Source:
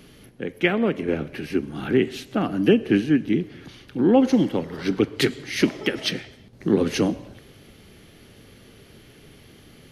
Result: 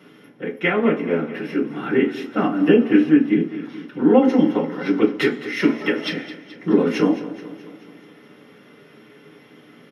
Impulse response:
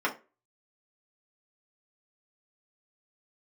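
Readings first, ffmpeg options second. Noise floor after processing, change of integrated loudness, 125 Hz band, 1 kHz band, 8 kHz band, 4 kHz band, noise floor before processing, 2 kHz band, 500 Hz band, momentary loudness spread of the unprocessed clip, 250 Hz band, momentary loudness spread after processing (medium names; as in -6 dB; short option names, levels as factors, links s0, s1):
-49 dBFS, +3.0 dB, -1.5 dB, +4.5 dB, no reading, -3.0 dB, -50 dBFS, +3.5 dB, +3.5 dB, 11 LU, +4.0 dB, 16 LU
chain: -filter_complex "[0:a]aecho=1:1:214|428|642|856|1070|1284:0.178|0.103|0.0598|0.0347|0.0201|0.0117[s0];[1:a]atrim=start_sample=2205[s1];[s0][s1]afir=irnorm=-1:irlink=0,volume=0.473"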